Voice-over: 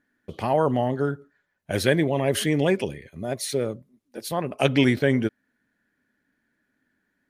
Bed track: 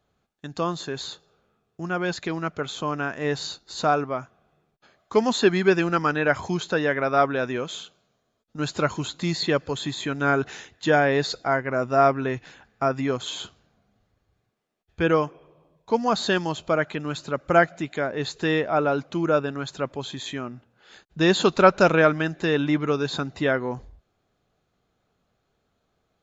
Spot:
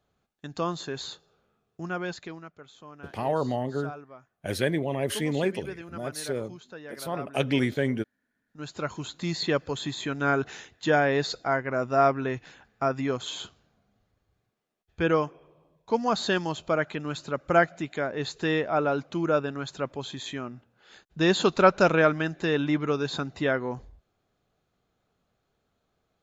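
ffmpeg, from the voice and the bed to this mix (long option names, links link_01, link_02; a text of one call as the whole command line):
ffmpeg -i stem1.wav -i stem2.wav -filter_complex "[0:a]adelay=2750,volume=-5.5dB[link_01];[1:a]volume=13.5dB,afade=type=out:start_time=1.76:duration=0.75:silence=0.149624,afade=type=in:start_time=8.3:duration=1.19:silence=0.149624[link_02];[link_01][link_02]amix=inputs=2:normalize=0" out.wav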